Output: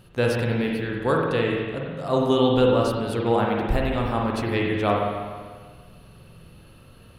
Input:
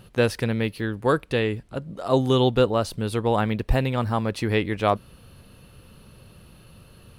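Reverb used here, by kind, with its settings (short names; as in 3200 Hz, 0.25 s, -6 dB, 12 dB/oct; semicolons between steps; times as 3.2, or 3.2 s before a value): spring tank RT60 1.6 s, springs 43/49 ms, chirp 50 ms, DRR -1.5 dB; gain -3 dB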